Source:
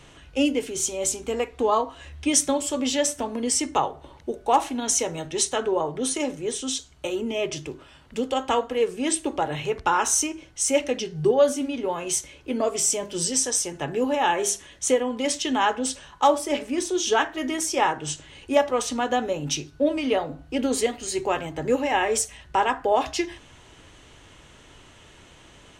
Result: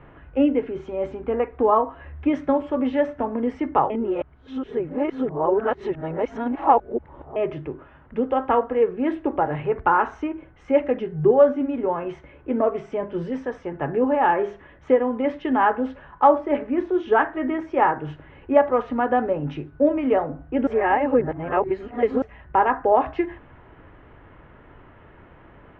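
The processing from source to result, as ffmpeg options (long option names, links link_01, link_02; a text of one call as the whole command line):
ffmpeg -i in.wav -filter_complex "[0:a]asplit=5[link_01][link_02][link_03][link_04][link_05];[link_01]atrim=end=3.902[link_06];[link_02]atrim=start=3.898:end=7.362,asetpts=PTS-STARTPTS,areverse[link_07];[link_03]atrim=start=7.358:end=20.672[link_08];[link_04]atrim=start=20.668:end=22.222,asetpts=PTS-STARTPTS,areverse[link_09];[link_05]atrim=start=22.218[link_10];[link_06][link_07]acrossfade=duration=0.004:curve1=hsin:curve2=hsin[link_11];[link_11][link_08]acrossfade=duration=0.004:curve1=hsin:curve2=hsin[link_12];[link_12][link_09]acrossfade=duration=0.004:curve1=hsin:curve2=hsin[link_13];[link_13][link_10]acrossfade=duration=0.004:curve1=hsin:curve2=hsin,lowpass=frequency=1800:width=0.5412,lowpass=frequency=1800:width=1.3066,volume=3.5dB" out.wav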